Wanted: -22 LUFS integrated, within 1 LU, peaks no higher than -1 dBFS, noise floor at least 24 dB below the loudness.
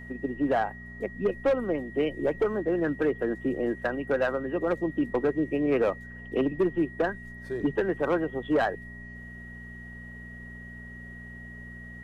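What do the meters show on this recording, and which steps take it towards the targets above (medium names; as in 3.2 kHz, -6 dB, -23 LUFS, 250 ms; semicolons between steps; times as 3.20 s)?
hum 60 Hz; highest harmonic 240 Hz; hum level -43 dBFS; steady tone 1.9 kHz; tone level -44 dBFS; loudness -28.5 LUFS; peak level -17.0 dBFS; loudness target -22.0 LUFS
-> de-hum 60 Hz, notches 4; band-stop 1.9 kHz, Q 30; trim +6.5 dB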